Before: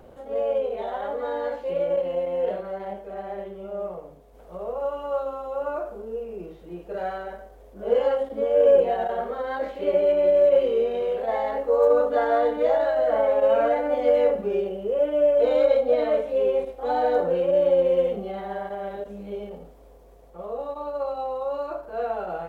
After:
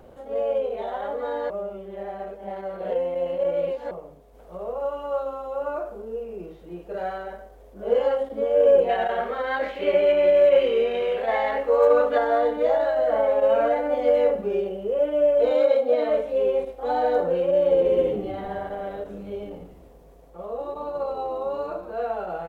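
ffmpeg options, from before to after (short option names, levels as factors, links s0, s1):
-filter_complex "[0:a]asettb=1/sr,asplit=3[s0][s1][s2];[s0]atrim=end=8.894[s3];[s1]atrim=start=8.89:end=12.18,asetpts=PTS-STARTPTS,afade=t=in:d=0.004:c=qsin,afade=t=out:st=3.286:d=0.004:c=qsin,equalizer=f=2300:t=o:w=1.7:g=10.5[s4];[s2]atrim=start=12.176[s5];[s3][s4]acrossfade=d=0.004:c1=hsin:c2=qsin[s6];[s6][s5]acrossfade=d=0.004:c1=qsin:c2=hsin,asettb=1/sr,asplit=3[s7][s8][s9];[s7]atrim=end=15.514[s10];[s8]atrim=start=15.51:end=16.09,asetpts=PTS-STARTPTS,afade=t=in:d=0.004:c=qsin,afade=t=out:st=0.576:d=0.004:c=qsin,highpass=140[s11];[s9]atrim=start=16.086[s12];[s10][s11]acrossfade=d=0.004:c1=hsin:c2=qsin[s13];[s13][s12]acrossfade=d=0.004:c1=qsin:c2=hsin,asplit=3[s14][s15][s16];[s14]afade=t=out:st=17.7:d=0.02[s17];[s15]asplit=6[s18][s19][s20][s21][s22][s23];[s19]adelay=145,afreqshift=-110,volume=0.237[s24];[s20]adelay=290,afreqshift=-220,volume=0.122[s25];[s21]adelay=435,afreqshift=-330,volume=0.0617[s26];[s22]adelay=580,afreqshift=-440,volume=0.0316[s27];[s23]adelay=725,afreqshift=-550,volume=0.016[s28];[s18][s24][s25][s26][s27][s28]amix=inputs=6:normalize=0,afade=t=in:st=17.7:d=0.02,afade=t=out:st=21.93:d=0.02[s29];[s16]afade=t=in:st=21.93:d=0.02[s30];[s17][s29][s30]amix=inputs=3:normalize=0,asplit=3[s31][s32][s33];[s31]atrim=end=1.502[s34];[s32]atrim=start=1.498:end=3.912,asetpts=PTS-STARTPTS,areverse[s35];[s33]atrim=start=3.908[s36];[s34][s35]acrossfade=d=0.004:c1=hsin:c2=hsin[s37];[s37][s36]acrossfade=d=0.004:c1=hsin:c2=hsin"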